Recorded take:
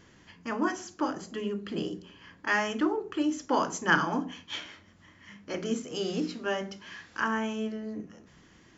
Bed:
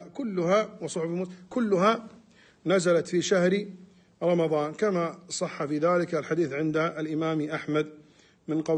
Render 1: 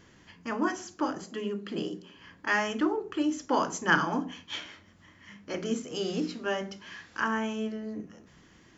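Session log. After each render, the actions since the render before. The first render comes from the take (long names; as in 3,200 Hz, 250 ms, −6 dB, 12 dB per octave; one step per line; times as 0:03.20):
0:01.24–0:02.18: high-pass filter 150 Hz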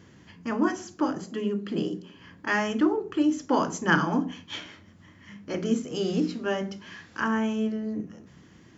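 high-pass filter 86 Hz
low-shelf EQ 320 Hz +9.5 dB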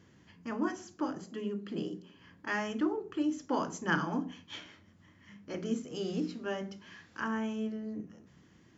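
level −8 dB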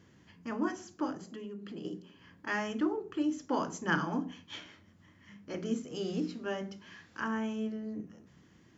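0:01.15–0:01.85: downward compressor 3 to 1, threshold −41 dBFS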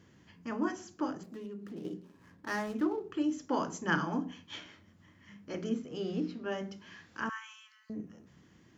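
0:01.23–0:03.11: running median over 15 samples
0:05.69–0:06.52: high-frequency loss of the air 130 metres
0:07.29–0:07.90: Butterworth high-pass 980 Hz 96 dB per octave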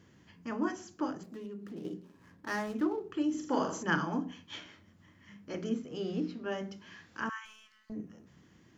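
0:03.30–0:03.83: flutter between parallel walls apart 7.3 metres, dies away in 0.53 s
0:07.45–0:07.92: gain on one half-wave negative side −7 dB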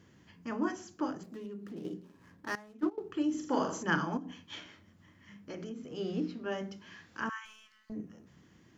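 0:02.55–0:02.98: noise gate −30 dBFS, range −17 dB
0:04.17–0:05.98: downward compressor, threshold −38 dBFS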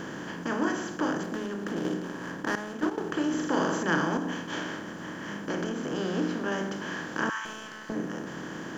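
compressor on every frequency bin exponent 0.4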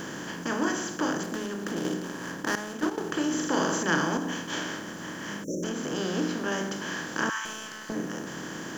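0:05.44–0:05.64: time-frequency box erased 630–5,400 Hz
high-shelf EQ 4,500 Hz +12 dB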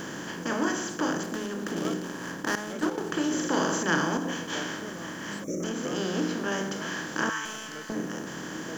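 mix in bed −18 dB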